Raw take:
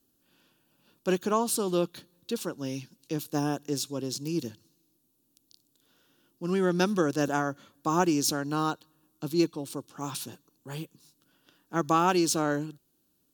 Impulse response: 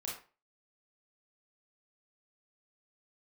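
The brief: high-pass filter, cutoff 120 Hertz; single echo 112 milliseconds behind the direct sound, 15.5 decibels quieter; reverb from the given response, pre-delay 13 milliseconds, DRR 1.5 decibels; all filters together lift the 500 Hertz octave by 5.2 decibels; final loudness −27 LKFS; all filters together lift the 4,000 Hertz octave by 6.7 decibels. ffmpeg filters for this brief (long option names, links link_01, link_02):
-filter_complex "[0:a]highpass=120,equalizer=frequency=500:width_type=o:gain=7,equalizer=frequency=4000:width_type=o:gain=8.5,aecho=1:1:112:0.168,asplit=2[link_01][link_02];[1:a]atrim=start_sample=2205,adelay=13[link_03];[link_02][link_03]afir=irnorm=-1:irlink=0,volume=-1.5dB[link_04];[link_01][link_04]amix=inputs=2:normalize=0,volume=-3.5dB"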